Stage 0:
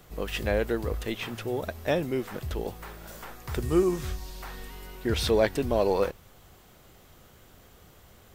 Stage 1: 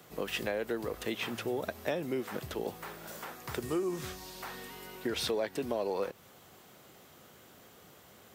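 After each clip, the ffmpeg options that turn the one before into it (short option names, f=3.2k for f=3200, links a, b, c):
-filter_complex "[0:a]acrossover=split=290[a][b];[a]alimiter=level_in=4.5dB:limit=-24dB:level=0:latency=1,volume=-4.5dB[c];[c][b]amix=inputs=2:normalize=0,acompressor=threshold=-29dB:ratio=6,highpass=160"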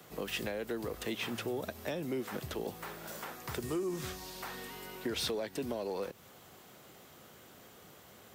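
-filter_complex "[0:a]acrossover=split=320|3000[a][b][c];[b]acompressor=threshold=-41dB:ratio=2[d];[a][d][c]amix=inputs=3:normalize=0,asplit=2[e][f];[f]asoftclip=type=hard:threshold=-33dB,volume=-5.5dB[g];[e][g]amix=inputs=2:normalize=0,volume=-3dB"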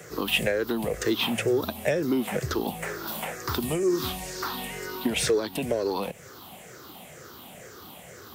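-af "afftfilt=real='re*pow(10,13/40*sin(2*PI*(0.52*log(max(b,1)*sr/1024/100)/log(2)-(-2.1)*(pts-256)/sr)))':imag='im*pow(10,13/40*sin(2*PI*(0.52*log(max(b,1)*sr/1024/100)/log(2)-(-2.1)*(pts-256)/sr)))':win_size=1024:overlap=0.75,volume=8.5dB"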